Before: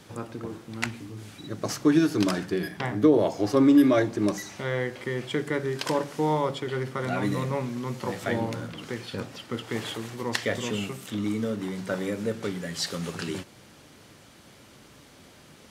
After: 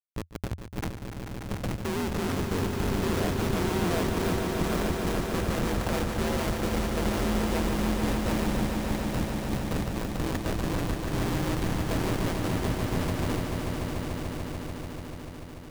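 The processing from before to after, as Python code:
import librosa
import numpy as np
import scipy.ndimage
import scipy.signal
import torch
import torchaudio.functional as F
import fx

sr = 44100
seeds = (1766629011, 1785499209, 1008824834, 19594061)

p1 = fx.peak_eq(x, sr, hz=4300.0, db=-14.0, octaves=1.7)
p2 = fx.schmitt(p1, sr, flips_db=-30.0)
p3 = p2 * np.sin(2.0 * np.pi * 84.0 * np.arange(len(p2)) / sr)
p4 = p3 + fx.echo_swell(p3, sr, ms=146, loudest=5, wet_db=-8.0, dry=0)
y = p4 * librosa.db_to_amplitude(1.0)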